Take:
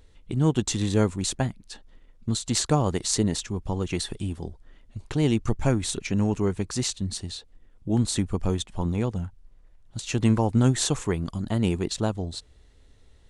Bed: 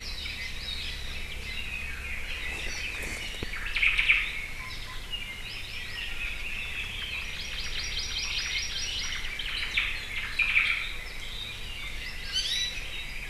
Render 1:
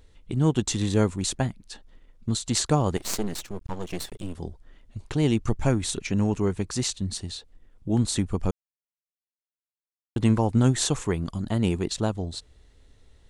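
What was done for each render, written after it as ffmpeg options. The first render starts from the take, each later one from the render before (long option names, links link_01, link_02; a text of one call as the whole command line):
ffmpeg -i in.wav -filter_complex "[0:a]asettb=1/sr,asplit=3[link_01][link_02][link_03];[link_01]atrim=end=2.974[link_04];[link_02]atrim=start=2.97:end=4.35,asetpts=PTS-STARTPTS,afade=type=in:duration=0.004:curve=qsin,afade=type=out:start_time=1.376:duration=0.004:curve=qsin,aeval=exprs='max(val(0),0)':channel_layout=same[link_05];[link_03]atrim=start=4.346[link_06];[link_04][link_05]acrossfade=duration=0.004:curve1=hsin:curve2=qsin[link_07];[link_07][link_06]acrossfade=duration=0.004:curve1=qsin:curve2=hsin,asplit=3[link_08][link_09][link_10];[link_08]atrim=end=8.51,asetpts=PTS-STARTPTS,afade=type=out:start_time=8.506:duration=0.004:curve=hsin[link_11];[link_09]atrim=start=8.51:end=10.16,asetpts=PTS-STARTPTS,volume=0[link_12];[link_10]atrim=start=10.16,asetpts=PTS-STARTPTS,afade=type=in:duration=0.004:curve=hsin[link_13];[link_11][link_12][link_13]concat=n=3:v=0:a=1" out.wav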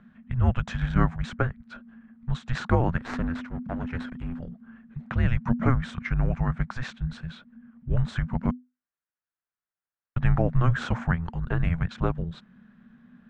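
ffmpeg -i in.wav -af "lowpass=frequency=1800:width_type=q:width=2.9,afreqshift=-250" out.wav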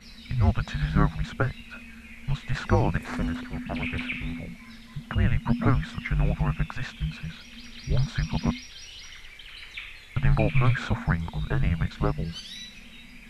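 ffmpeg -i in.wav -i bed.wav -filter_complex "[1:a]volume=-11dB[link_01];[0:a][link_01]amix=inputs=2:normalize=0" out.wav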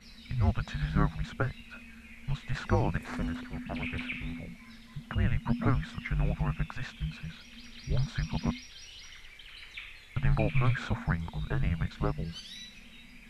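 ffmpeg -i in.wav -af "volume=-5dB" out.wav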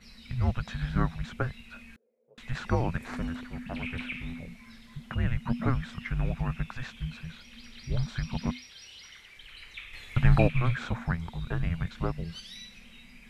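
ffmpeg -i in.wav -filter_complex "[0:a]asettb=1/sr,asplit=3[link_01][link_02][link_03];[link_01]atrim=end=1.964[link_04];[link_02]atrim=start=1.96:end=2.38,asetpts=PTS-STARTPTS,afade=type=in:duration=0.004:curve=qsin,afade=type=out:start_time=0.416:duration=0.004:curve=qsin,asuperpass=centerf=480:order=4:qfactor=3.4[link_05];[link_03]atrim=start=2.376[link_06];[link_04][link_05]acrossfade=duration=0.004:curve1=hsin:curve2=qsin[link_07];[link_07][link_06]acrossfade=duration=0.004:curve1=qsin:curve2=hsin,asettb=1/sr,asplit=3[link_08][link_09][link_10];[link_08]atrim=end=8.524[link_11];[link_09]atrim=start=8.52:end=9.37,asetpts=PTS-STARTPTS,afade=type=in:duration=0.004:curve=qsin,afade=type=out:start_time=0.846:duration=0.004:curve=qsin,highpass=frequency=140:poles=1[link_12];[link_10]atrim=start=9.366[link_13];[link_11][link_12]acrossfade=duration=0.004:curve1=hsin:curve2=qsin[link_14];[link_14][link_13]acrossfade=duration=0.004:curve1=qsin:curve2=hsin,asettb=1/sr,asplit=3[link_15][link_16][link_17];[link_15]atrim=end=9.934[link_18];[link_16]atrim=start=9.93:end=10.48,asetpts=PTS-STARTPTS,afade=type=in:duration=0.004:curve=qsin,afade=type=out:start_time=0.546:duration=0.004:curve=qsin,acontrast=65[link_19];[link_17]atrim=start=10.476[link_20];[link_18][link_19]acrossfade=duration=0.004:curve1=hsin:curve2=qsin[link_21];[link_21][link_20]acrossfade=duration=0.004:curve1=qsin:curve2=hsin" out.wav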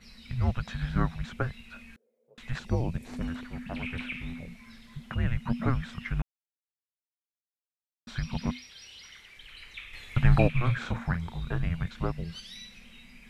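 ffmpeg -i in.wav -filter_complex "[0:a]asettb=1/sr,asplit=3[link_01][link_02][link_03];[link_01]atrim=end=2.594[link_04];[link_02]atrim=start=2.59:end=3.21,asetpts=PTS-STARTPTS,afade=type=in:duration=0.004:curve=qsin,afade=type=out:start_time=0.616:duration=0.004:curve=qsin,equalizer=frequency=1400:width_type=o:width=1.5:gain=-14.5[link_05];[link_03]atrim=start=3.206[link_06];[link_04][link_05]acrossfade=duration=0.004:curve1=hsin:curve2=qsin[link_07];[link_07][link_06]acrossfade=duration=0.004:curve1=qsin:curve2=hsin,asettb=1/sr,asplit=3[link_08][link_09][link_10];[link_08]atrim=end=10.574[link_11];[link_09]atrim=start=10.57:end=11.57,asetpts=PTS-STARTPTS,afade=type=in:duration=0.004:curve=qsin,afade=type=out:start_time=0.996:duration=0.004:curve=qsin,asplit=2[link_12][link_13];[link_13]adelay=35,volume=-10dB[link_14];[link_12][link_14]amix=inputs=2:normalize=0,atrim=end_sample=44100[link_15];[link_10]atrim=start=11.566[link_16];[link_11][link_15]acrossfade=duration=0.004:curve1=hsin:curve2=qsin[link_17];[link_17][link_16]acrossfade=duration=0.004:curve1=qsin:curve2=hsin,asplit=3[link_18][link_19][link_20];[link_18]atrim=end=6.22,asetpts=PTS-STARTPTS,afade=type=out:start_time=6.216:duration=0.004:curve=hsin[link_21];[link_19]atrim=start=6.22:end=8.07,asetpts=PTS-STARTPTS,volume=0[link_22];[link_20]atrim=start=8.07,asetpts=PTS-STARTPTS,afade=type=in:duration=0.004:curve=hsin[link_23];[link_21][link_22][link_23]concat=n=3:v=0:a=1" out.wav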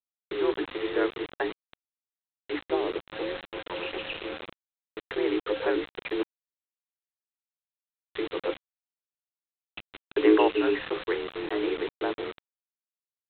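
ffmpeg -i in.wav -af "afreqshift=290,aresample=8000,acrusher=bits=5:mix=0:aa=0.000001,aresample=44100" out.wav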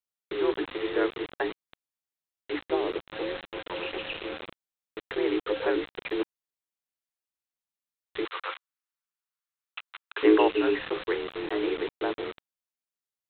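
ffmpeg -i in.wav -filter_complex "[0:a]asettb=1/sr,asplit=3[link_01][link_02][link_03];[link_01]atrim=end=8.254[link_04];[link_02]atrim=start=8.25:end=10.23,asetpts=PTS-STARTPTS,afade=type=in:duration=0.004:curve=qsin,afade=type=out:start_time=1.976:duration=0.004:curve=qsin,highpass=frequency=1200:width_type=q:width=2.3[link_05];[link_03]atrim=start=10.226[link_06];[link_04][link_05]acrossfade=duration=0.004:curve1=hsin:curve2=qsin[link_07];[link_07][link_06]acrossfade=duration=0.004:curve1=qsin:curve2=hsin" out.wav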